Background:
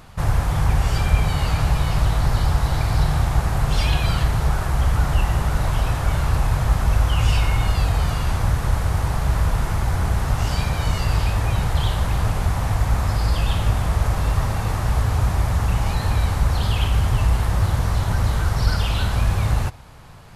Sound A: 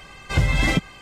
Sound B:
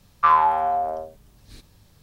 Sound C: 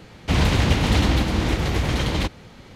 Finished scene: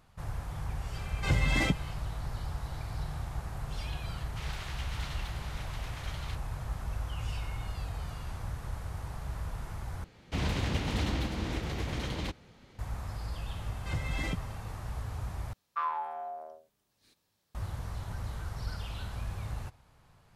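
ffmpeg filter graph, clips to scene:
-filter_complex "[1:a]asplit=2[a][b];[3:a]asplit=2[c][d];[0:a]volume=-18dB[e];[c]highpass=f=1.1k:w=0.5412,highpass=f=1.1k:w=1.3066[f];[2:a]highpass=f=460:p=1[g];[e]asplit=3[h][i][j];[h]atrim=end=10.044[k];[d]atrim=end=2.75,asetpts=PTS-STARTPTS,volume=-12.5dB[l];[i]atrim=start=12.786:end=15.534[m];[g]atrim=end=2.02,asetpts=PTS-STARTPTS,volume=-15.5dB[n];[j]atrim=start=17.546[o];[a]atrim=end=1.01,asetpts=PTS-STARTPTS,volume=-7.5dB,afade=t=in:d=0.004:c=hsin,afade=t=out:st=1.006:d=0.004:c=hsin,adelay=930[p];[f]atrim=end=2.75,asetpts=PTS-STARTPTS,volume=-17.5dB,afade=t=in:d=0.004:c=hsin,afade=t=out:st=2.746:d=0.004:c=hsin,adelay=4080[q];[b]atrim=end=1.01,asetpts=PTS-STARTPTS,volume=-15.5dB,afade=t=in:d=0.004:c=hsin,afade=t=out:st=1.006:d=0.004:c=hsin,adelay=13560[r];[k][l]acrossfade=d=0.004:c1=hsin:c2=hsin[s];[s][m]acrossfade=d=0.004:c1=hsin:c2=hsin[t];[t][n]acrossfade=d=0.004:c1=hsin:c2=hsin[u];[u][o]acrossfade=d=0.004:c1=hsin:c2=hsin[v];[v][p][q][r]amix=inputs=4:normalize=0"

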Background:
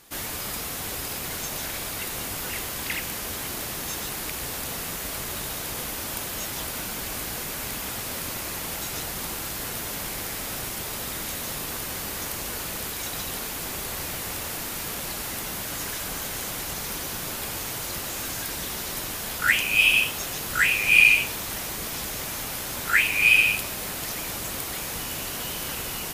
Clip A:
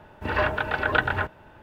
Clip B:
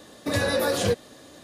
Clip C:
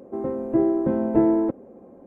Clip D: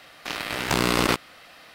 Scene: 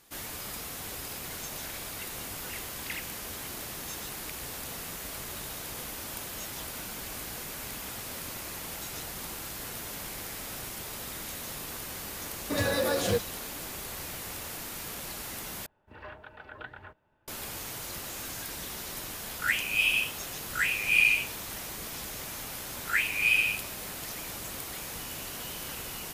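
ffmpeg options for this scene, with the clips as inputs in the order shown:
-filter_complex "[0:a]volume=-7dB[a];[2:a]acrusher=bits=7:mode=log:mix=0:aa=0.000001[b];[1:a]flanger=delay=1.5:depth=8:regen=83:speed=1.6:shape=triangular[c];[a]asplit=2[d][e];[d]atrim=end=15.664[f];[c]atrim=end=1.62,asetpts=PTS-STARTPTS,volume=-17dB[g];[e]atrim=start=17.276[h];[b]atrim=end=1.43,asetpts=PTS-STARTPTS,volume=-4dB,afade=t=in:d=0.004:c=hsin,afade=t=out:st=1.426:d=0.004:c=hsin,adelay=12240[i];[f][g]acrossfade=d=0.004:c1=hsin:c2=hsin[j];[j][h]acrossfade=d=0.004:c1=hsin:c2=hsin[k];[k][i]amix=inputs=2:normalize=0"

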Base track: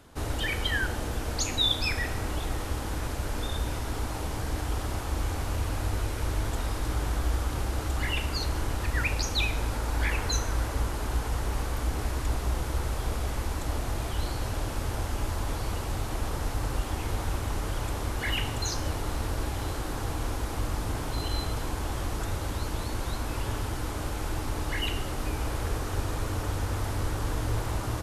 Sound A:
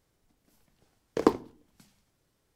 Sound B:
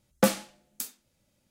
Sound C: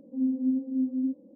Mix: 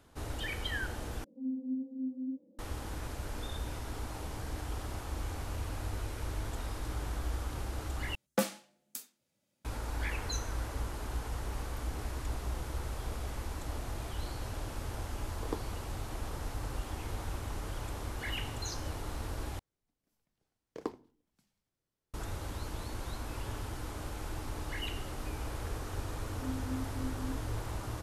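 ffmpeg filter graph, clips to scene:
-filter_complex "[3:a]asplit=2[a][b];[1:a]asplit=2[c][d];[0:a]volume=-8dB[e];[2:a]highpass=140[f];[e]asplit=4[g][h][i][j];[g]atrim=end=1.244[k];[a]atrim=end=1.35,asetpts=PTS-STARTPTS,volume=-9.5dB[l];[h]atrim=start=2.586:end=8.154[m];[f]atrim=end=1.5,asetpts=PTS-STARTPTS,volume=-7.5dB[n];[i]atrim=start=9.646:end=19.594[o];[d]atrim=end=2.55,asetpts=PTS-STARTPTS,volume=-15.5dB[p];[j]atrim=start=22.136[q];[c]atrim=end=2.55,asetpts=PTS-STARTPTS,volume=-16.5dB,afade=t=in:d=0.004:c=hsin,afade=t=out:st=2.546:d=0.004:c=hsin,adelay=14260[r];[b]atrim=end=1.35,asetpts=PTS-STARTPTS,volume=-13.5dB,afade=t=in:d=0.004:c=hsin,afade=t=out:st=1.346:d=0.004:c=hsin,adelay=26250[s];[k][l]acrossfade=d=0.004:c1=hsin:c2=hsin[t];[t][m]acrossfade=d=0.004:c1=hsin:c2=hsin[u];[u][n]acrossfade=d=0.004:c1=hsin:c2=hsin[v];[v][o]acrossfade=d=0.004:c1=hsin:c2=hsin[w];[w][p]acrossfade=d=0.004:c1=hsin:c2=hsin[x];[x][q]acrossfade=d=0.004:c1=hsin:c2=hsin[y];[y][r][s]amix=inputs=3:normalize=0"

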